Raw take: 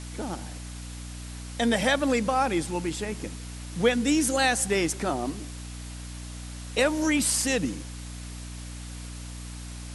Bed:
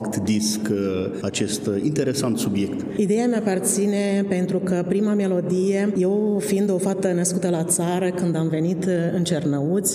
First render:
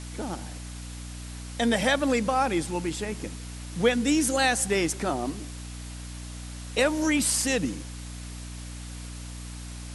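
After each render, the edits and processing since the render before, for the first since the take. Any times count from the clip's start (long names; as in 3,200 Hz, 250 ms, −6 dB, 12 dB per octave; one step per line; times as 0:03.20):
no processing that can be heard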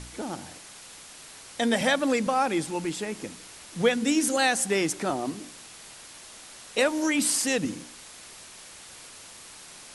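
hum removal 60 Hz, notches 5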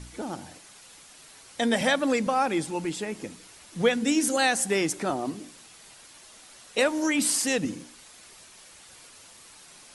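broadband denoise 6 dB, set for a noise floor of −47 dBFS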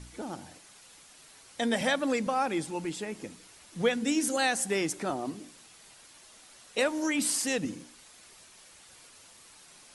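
level −4 dB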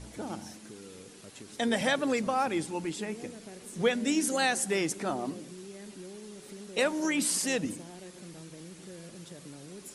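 mix in bed −25.5 dB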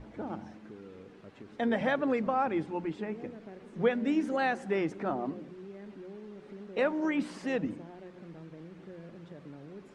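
low-pass filter 1,800 Hz 12 dB per octave
mains-hum notches 60/120/180 Hz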